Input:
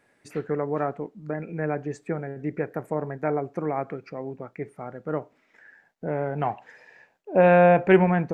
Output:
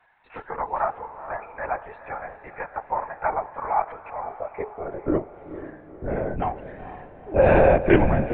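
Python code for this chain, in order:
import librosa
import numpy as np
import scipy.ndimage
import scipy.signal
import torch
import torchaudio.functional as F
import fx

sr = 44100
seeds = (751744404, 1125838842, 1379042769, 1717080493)

y = fx.filter_sweep_highpass(x, sr, from_hz=890.0, to_hz=66.0, start_s=4.18, end_s=6.28, q=4.2)
y = fx.lpc_vocoder(y, sr, seeds[0], excitation='whisper', order=16)
y = fx.echo_diffused(y, sr, ms=467, feedback_pct=48, wet_db=-12.0)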